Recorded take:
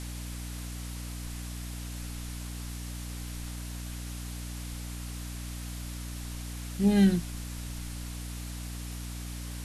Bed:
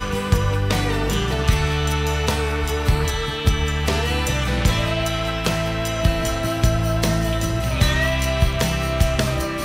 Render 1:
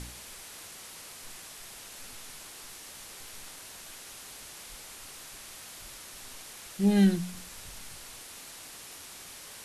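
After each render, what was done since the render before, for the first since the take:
hum removal 60 Hz, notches 5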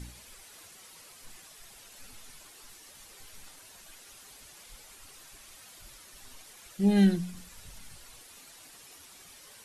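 broadband denoise 9 dB, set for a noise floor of −47 dBFS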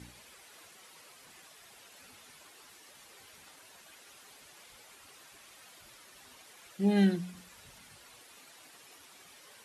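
high-pass filter 85 Hz 12 dB per octave
bass and treble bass −5 dB, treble −6 dB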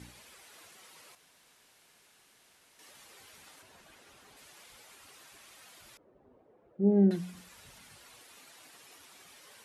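0:01.15–0:02.79: fill with room tone
0:03.62–0:04.37: spectral tilt −2 dB per octave
0:05.97–0:07.11: low-pass with resonance 480 Hz, resonance Q 1.7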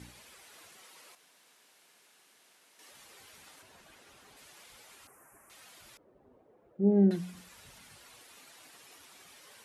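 0:00.82–0:02.92: high-pass filter 210 Hz
0:05.07–0:05.50: Butterworth band-reject 3,900 Hz, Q 0.53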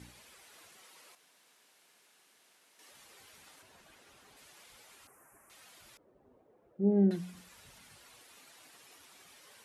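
level −2.5 dB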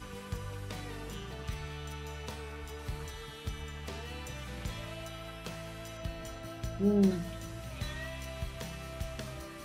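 mix in bed −21 dB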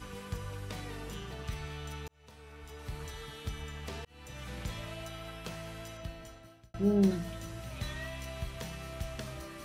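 0:02.08–0:03.13: fade in
0:04.05–0:04.48: fade in
0:05.79–0:06.74: fade out

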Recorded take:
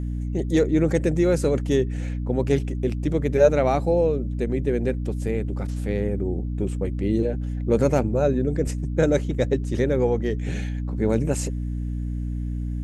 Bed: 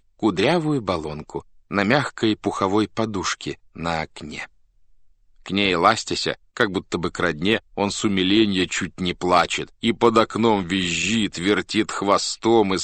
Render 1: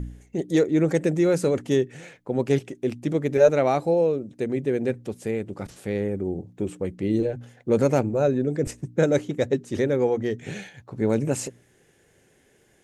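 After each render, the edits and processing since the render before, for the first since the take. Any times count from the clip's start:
hum removal 60 Hz, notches 5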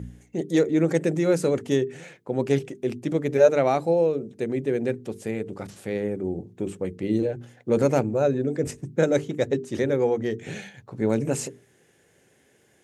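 high-pass filter 81 Hz
mains-hum notches 50/100/150/200/250/300/350/400/450 Hz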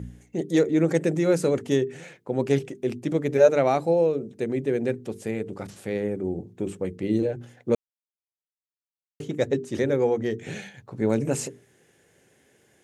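0:07.75–0:09.20: silence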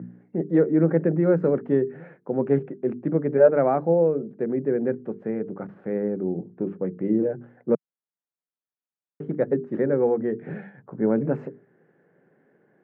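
Chebyshev band-pass filter 160–1,600 Hz, order 3
low-shelf EQ 230 Hz +6.5 dB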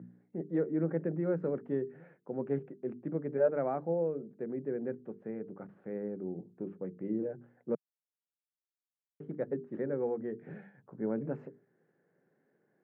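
level −12 dB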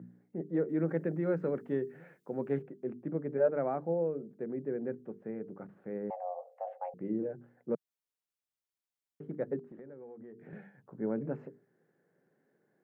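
0:00.69–0:02.62: high-shelf EQ 2,000 Hz +10.5 dB
0:06.10–0:06.94: frequency shifter +350 Hz
0:09.59–0:10.53: downward compressor 8 to 1, threshold −46 dBFS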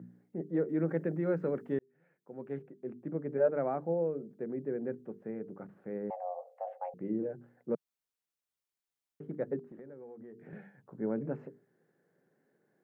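0:01.79–0:03.38: fade in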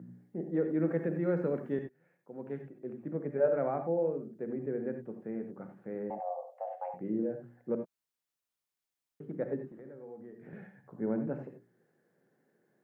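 reverb whose tail is shaped and stops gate 110 ms rising, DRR 6 dB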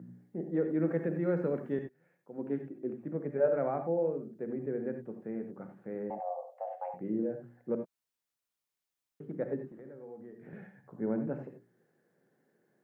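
0:02.38–0:02.94: parametric band 300 Hz +10 dB 0.62 octaves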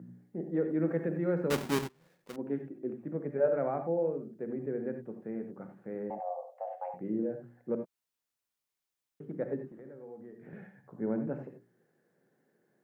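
0:01.50–0:02.36: each half-wave held at its own peak

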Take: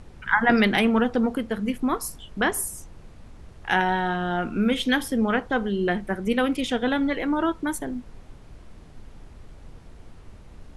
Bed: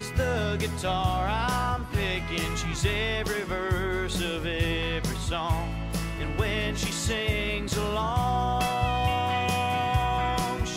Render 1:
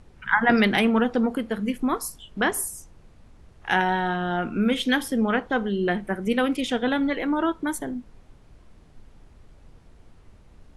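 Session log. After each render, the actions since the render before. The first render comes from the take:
noise reduction from a noise print 6 dB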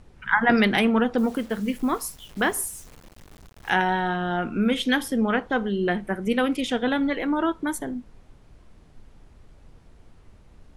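0:01.18–0:03.70: bit-depth reduction 8 bits, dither none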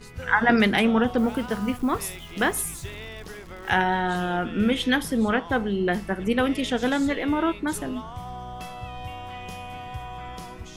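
mix in bed −11 dB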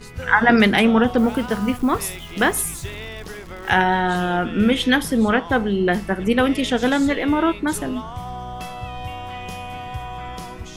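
level +5 dB
brickwall limiter −2 dBFS, peak gain reduction 1 dB

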